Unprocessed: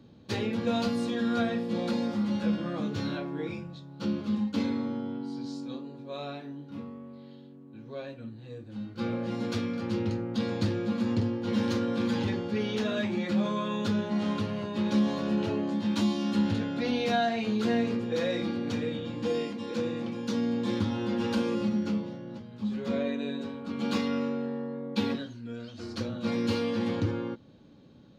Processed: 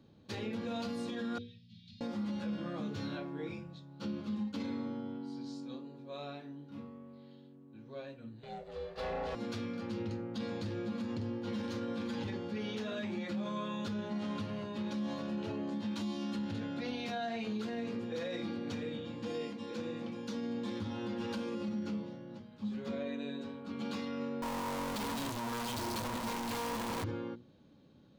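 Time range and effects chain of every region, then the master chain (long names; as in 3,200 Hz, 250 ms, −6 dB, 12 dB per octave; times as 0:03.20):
0:01.38–0:02.01: inverse Chebyshev band-stop filter 440–1,000 Hz, stop band 80 dB + high-frequency loss of the air 260 metres
0:08.43–0:09.35: high-shelf EQ 2,600 Hz +11.5 dB + ring modulation 280 Hz + mid-hump overdrive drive 19 dB, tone 1,100 Hz, clips at −19.5 dBFS
0:24.42–0:27.04: sign of each sample alone + parametric band 960 Hz +12 dB 0.28 octaves
whole clip: mains-hum notches 60/120/180/240/300/360/420/480 Hz; brickwall limiter −24 dBFS; level −6 dB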